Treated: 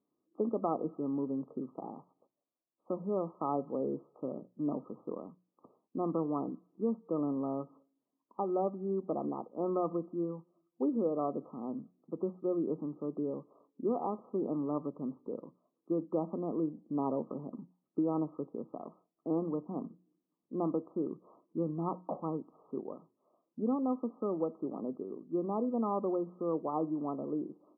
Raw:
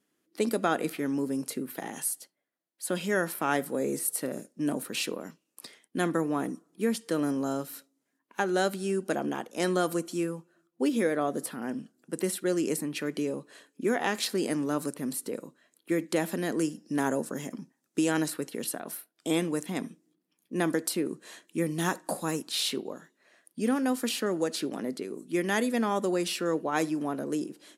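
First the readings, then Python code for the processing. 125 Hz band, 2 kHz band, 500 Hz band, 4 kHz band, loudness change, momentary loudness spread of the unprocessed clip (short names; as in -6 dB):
-5.5 dB, under -40 dB, -4.5 dB, under -40 dB, -5.5 dB, 11 LU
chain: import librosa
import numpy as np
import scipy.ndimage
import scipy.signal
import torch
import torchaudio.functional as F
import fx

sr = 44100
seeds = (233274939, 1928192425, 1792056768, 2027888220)

y = fx.brickwall_lowpass(x, sr, high_hz=1300.0)
y = fx.hum_notches(y, sr, base_hz=60, count=3)
y = F.gain(torch.from_numpy(y), -4.5).numpy()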